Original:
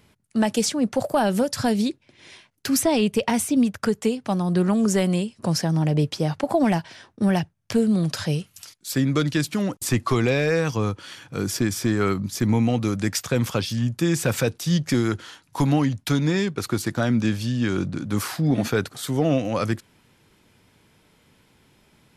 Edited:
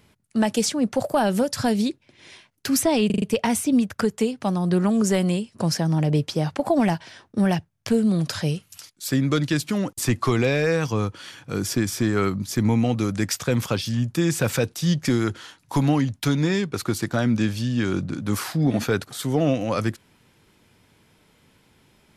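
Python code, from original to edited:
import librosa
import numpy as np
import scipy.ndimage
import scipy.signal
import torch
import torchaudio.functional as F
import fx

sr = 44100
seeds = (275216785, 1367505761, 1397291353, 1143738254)

y = fx.edit(x, sr, fx.stutter(start_s=3.06, slice_s=0.04, count=5), tone=tone)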